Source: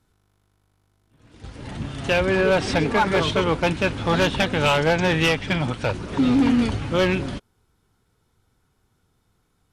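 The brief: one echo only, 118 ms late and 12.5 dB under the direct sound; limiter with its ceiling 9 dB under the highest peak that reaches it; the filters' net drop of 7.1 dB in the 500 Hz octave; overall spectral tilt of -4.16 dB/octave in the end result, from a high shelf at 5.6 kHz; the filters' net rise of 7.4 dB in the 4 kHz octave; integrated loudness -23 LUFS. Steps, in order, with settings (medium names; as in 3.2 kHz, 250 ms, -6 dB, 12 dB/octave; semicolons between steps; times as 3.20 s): peaking EQ 500 Hz -9 dB; peaking EQ 4 kHz +7.5 dB; treble shelf 5.6 kHz +7.5 dB; peak limiter -12.5 dBFS; delay 118 ms -12.5 dB; trim -0.5 dB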